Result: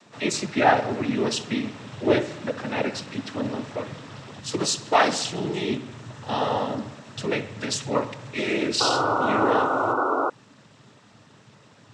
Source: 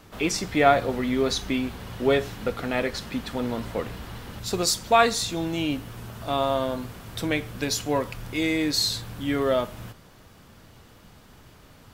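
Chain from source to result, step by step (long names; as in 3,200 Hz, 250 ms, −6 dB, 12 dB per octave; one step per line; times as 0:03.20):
cochlear-implant simulation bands 12
delay with a low-pass on its return 65 ms, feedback 64%, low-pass 3,500 Hz, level −15.5 dB
sound drawn into the spectrogram noise, 0:08.80–0:10.30, 250–1,500 Hz −23 dBFS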